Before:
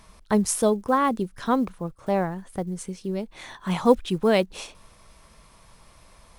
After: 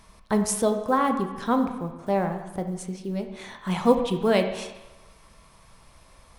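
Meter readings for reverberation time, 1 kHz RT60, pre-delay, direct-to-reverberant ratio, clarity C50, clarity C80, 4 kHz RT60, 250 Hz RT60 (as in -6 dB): 1.1 s, 1.1 s, 15 ms, 5.5 dB, 8.0 dB, 10.0 dB, 1.0 s, 0.95 s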